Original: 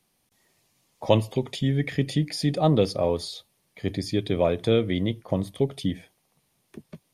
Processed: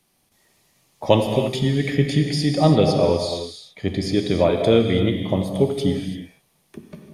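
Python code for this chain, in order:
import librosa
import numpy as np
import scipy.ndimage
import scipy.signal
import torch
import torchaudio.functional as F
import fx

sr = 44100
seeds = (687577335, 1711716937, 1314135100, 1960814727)

y = fx.lowpass(x, sr, hz=10000.0, slope=12, at=(2.07, 4.41))
y = fx.rev_gated(y, sr, seeds[0], gate_ms=360, shape='flat', drr_db=3.0)
y = y * librosa.db_to_amplitude(4.0)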